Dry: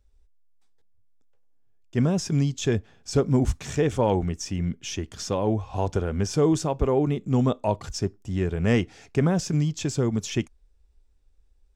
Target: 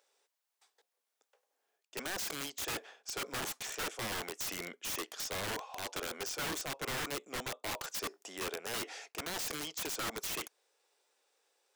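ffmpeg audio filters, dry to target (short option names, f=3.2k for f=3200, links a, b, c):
-af "highpass=f=490:w=0.5412,highpass=f=490:w=1.3066,areverse,acompressor=threshold=-43dB:ratio=5,areverse,aeval=exprs='(mod(106*val(0)+1,2)-1)/106':c=same,volume=8.5dB"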